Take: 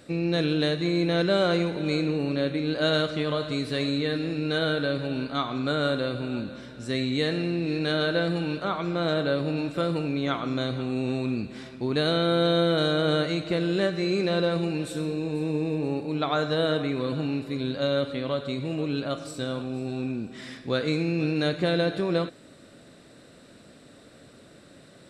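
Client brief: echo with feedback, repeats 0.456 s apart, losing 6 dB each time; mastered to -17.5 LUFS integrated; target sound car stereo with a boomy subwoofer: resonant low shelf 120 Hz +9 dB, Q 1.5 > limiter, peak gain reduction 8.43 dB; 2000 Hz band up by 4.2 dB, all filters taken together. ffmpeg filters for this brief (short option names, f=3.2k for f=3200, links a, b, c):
-af "lowshelf=f=120:t=q:w=1.5:g=9,equalizer=f=2k:t=o:g=6,aecho=1:1:456|912|1368|1824|2280|2736:0.501|0.251|0.125|0.0626|0.0313|0.0157,volume=11dB,alimiter=limit=-8dB:level=0:latency=1"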